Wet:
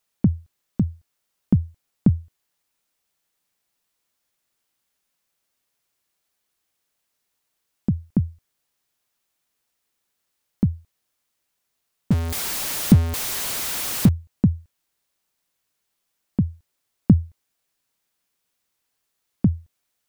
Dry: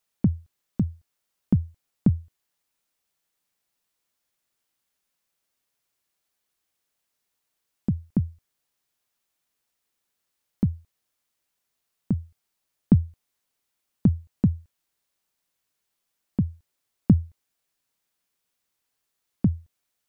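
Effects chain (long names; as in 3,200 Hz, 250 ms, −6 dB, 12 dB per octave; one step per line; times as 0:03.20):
0:12.11–0:14.09: converter with a step at zero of −23.5 dBFS
level +3 dB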